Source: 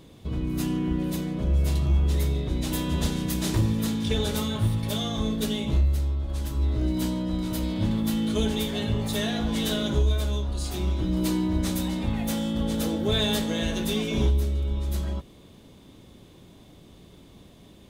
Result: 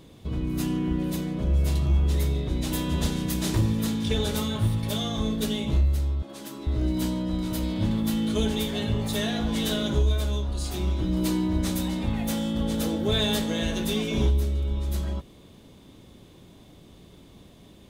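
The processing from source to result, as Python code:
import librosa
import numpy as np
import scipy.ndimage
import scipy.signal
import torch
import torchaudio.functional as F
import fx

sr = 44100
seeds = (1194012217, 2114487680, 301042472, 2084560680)

y = fx.highpass(x, sr, hz=200.0, slope=24, at=(6.22, 6.67))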